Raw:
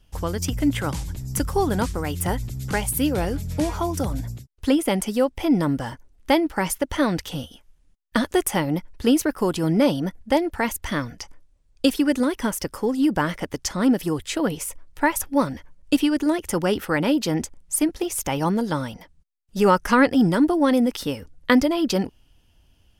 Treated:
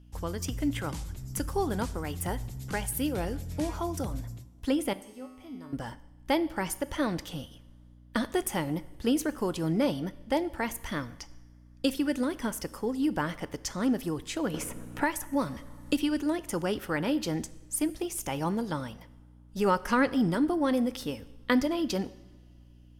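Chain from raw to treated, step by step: hum 60 Hz, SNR 22 dB; 4.93–5.73 s: feedback comb 85 Hz, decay 1.1 s, harmonics odd, mix 90%; two-slope reverb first 0.82 s, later 2.9 s, from -19 dB, DRR 15 dB; 14.54–16.21 s: three bands compressed up and down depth 70%; trim -8 dB

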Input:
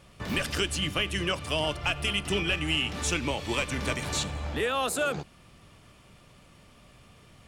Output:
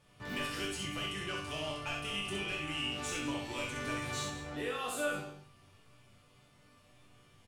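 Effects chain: saturation -20.5 dBFS, distortion -18 dB; chord resonator G2 major, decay 0.43 s; on a send: multi-tap echo 64/199 ms -4/-14.5 dB; on the sum: trim +5.5 dB

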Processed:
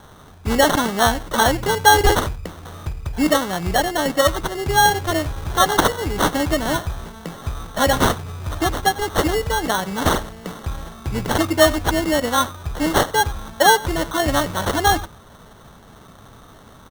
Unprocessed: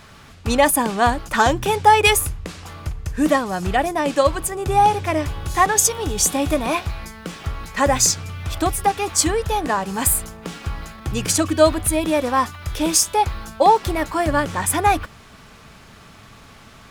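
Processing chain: on a send: delay 91 ms -20 dB; on the sum: wow and flutter 59 cents; sample-and-hold 18×

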